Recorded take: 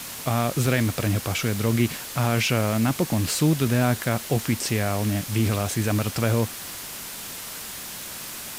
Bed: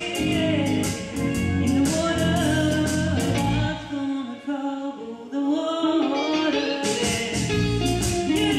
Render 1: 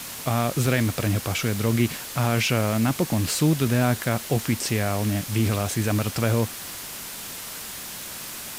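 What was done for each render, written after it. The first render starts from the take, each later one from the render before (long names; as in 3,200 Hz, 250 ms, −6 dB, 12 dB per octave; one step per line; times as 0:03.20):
no processing that can be heard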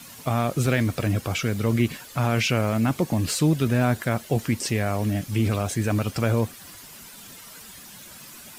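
broadband denoise 11 dB, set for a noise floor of −36 dBFS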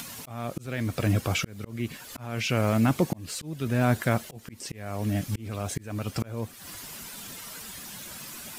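volume swells 526 ms
upward compression, threshold −35 dBFS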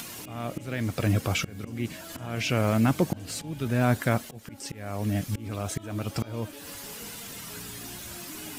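mix in bed −23.5 dB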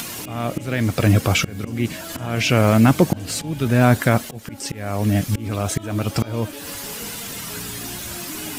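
level +9 dB
brickwall limiter −3 dBFS, peak gain reduction 2 dB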